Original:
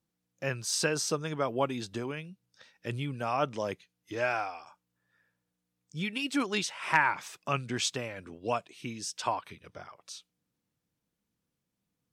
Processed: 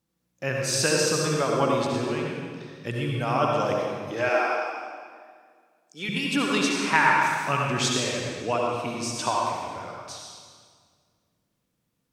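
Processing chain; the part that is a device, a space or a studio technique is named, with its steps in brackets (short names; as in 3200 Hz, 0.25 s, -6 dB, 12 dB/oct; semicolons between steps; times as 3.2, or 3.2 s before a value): stairwell (reverb RT60 1.9 s, pre-delay 61 ms, DRR -2 dB); 4.29–6.09 HPF 260 Hz 24 dB/oct; gain +3.5 dB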